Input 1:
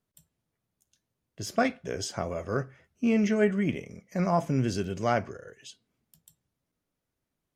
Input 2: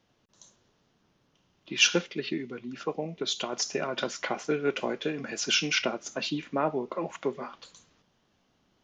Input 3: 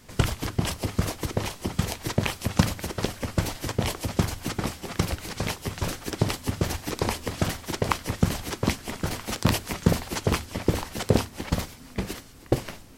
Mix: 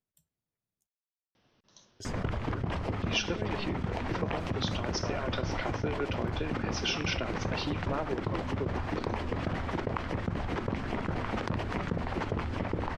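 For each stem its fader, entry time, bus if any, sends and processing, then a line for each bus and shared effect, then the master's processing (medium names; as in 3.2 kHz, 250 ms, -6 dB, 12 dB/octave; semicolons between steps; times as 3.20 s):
-10.5 dB, 0.00 s, muted 0.87–2.00 s, no send, none
+1.5 dB, 1.35 s, no send, elliptic low-pass 5.7 kHz
-7.0 dB, 2.05 s, no send, low-pass 1.8 kHz 12 dB/octave; level flattener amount 70%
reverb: none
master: compression 3:1, threshold -30 dBFS, peak gain reduction 11.5 dB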